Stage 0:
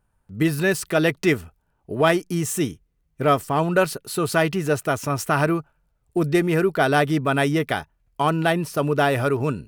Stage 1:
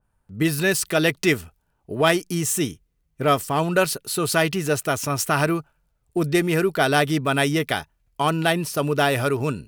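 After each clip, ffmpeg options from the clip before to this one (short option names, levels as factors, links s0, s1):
-af "adynamicequalizer=threshold=0.0158:dfrequency=2300:dqfactor=0.7:tfrequency=2300:tqfactor=0.7:attack=5:release=100:ratio=0.375:range=3.5:mode=boostabove:tftype=highshelf,volume=0.891"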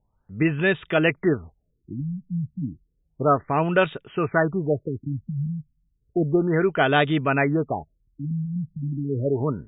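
-af "afftfilt=real='re*lt(b*sr/1024,220*pow(3800/220,0.5+0.5*sin(2*PI*0.32*pts/sr)))':imag='im*lt(b*sr/1024,220*pow(3800/220,0.5+0.5*sin(2*PI*0.32*pts/sr)))':win_size=1024:overlap=0.75"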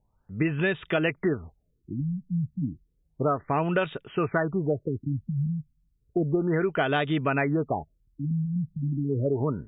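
-af "acompressor=threshold=0.0891:ratio=6"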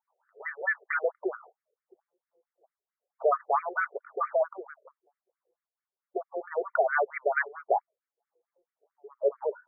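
-filter_complex "[0:a]asplit=2[s0][s1];[s1]highpass=f=720:p=1,volume=5.62,asoftclip=type=tanh:threshold=0.299[s2];[s0][s2]amix=inputs=2:normalize=0,lowpass=f=2400:p=1,volume=0.501,afftfilt=real='re*between(b*sr/1024,520*pow(1700/520,0.5+0.5*sin(2*PI*4.5*pts/sr))/1.41,520*pow(1700/520,0.5+0.5*sin(2*PI*4.5*pts/sr))*1.41)':imag='im*between(b*sr/1024,520*pow(1700/520,0.5+0.5*sin(2*PI*4.5*pts/sr))/1.41,520*pow(1700/520,0.5+0.5*sin(2*PI*4.5*pts/sr))*1.41)':win_size=1024:overlap=0.75"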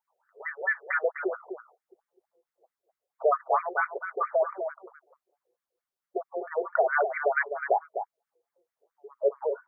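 -af "aecho=1:1:253:0.376,volume=1.12"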